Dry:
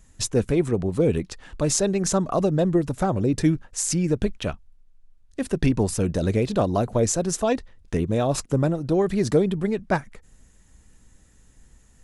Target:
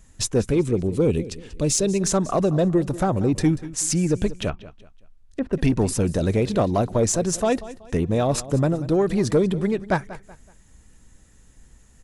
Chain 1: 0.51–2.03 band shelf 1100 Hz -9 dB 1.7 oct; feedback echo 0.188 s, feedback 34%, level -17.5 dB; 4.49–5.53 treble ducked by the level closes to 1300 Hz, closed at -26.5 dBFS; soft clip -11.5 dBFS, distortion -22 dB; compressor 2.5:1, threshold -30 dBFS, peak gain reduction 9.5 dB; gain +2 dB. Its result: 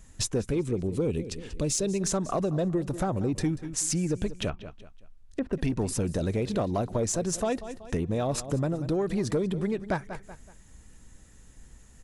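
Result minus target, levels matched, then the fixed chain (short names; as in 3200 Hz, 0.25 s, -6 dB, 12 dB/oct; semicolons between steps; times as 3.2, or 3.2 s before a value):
compressor: peak gain reduction +9.5 dB
0.51–2.03 band shelf 1100 Hz -9 dB 1.7 oct; feedback echo 0.188 s, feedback 34%, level -17.5 dB; 4.49–5.53 treble ducked by the level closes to 1300 Hz, closed at -26.5 dBFS; soft clip -11.5 dBFS, distortion -22 dB; gain +2 dB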